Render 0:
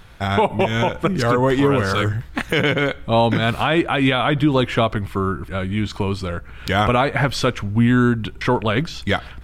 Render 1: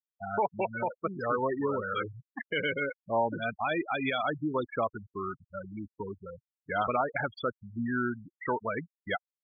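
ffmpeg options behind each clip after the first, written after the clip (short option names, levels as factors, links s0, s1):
-af "afftfilt=real='re*gte(hypot(re,im),0.251)':imag='im*gte(hypot(re,im),0.251)':win_size=1024:overlap=0.75,highpass=f=610:p=1,afftfilt=real='re*gte(hypot(re,im),0.0251)':imag='im*gte(hypot(re,im),0.0251)':win_size=1024:overlap=0.75,volume=0.422"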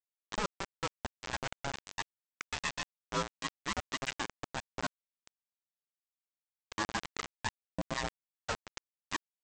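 -filter_complex "[0:a]acrossover=split=520[s0][s1];[s0]aeval=exprs='val(0)*(1-1/2+1/2*cos(2*PI*7.7*n/s))':c=same[s2];[s1]aeval=exprs='val(0)*(1-1/2-1/2*cos(2*PI*7.7*n/s))':c=same[s3];[s2][s3]amix=inputs=2:normalize=0,aresample=16000,acrusher=bits=4:mix=0:aa=0.000001,aresample=44100,aeval=exprs='val(0)*sin(2*PI*410*n/s)':c=same"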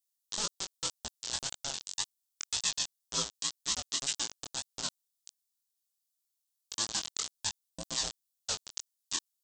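-af "aexciter=amount=8.2:drive=4.2:freq=3200,flanger=delay=17:depth=7.6:speed=1.9,volume=0.631"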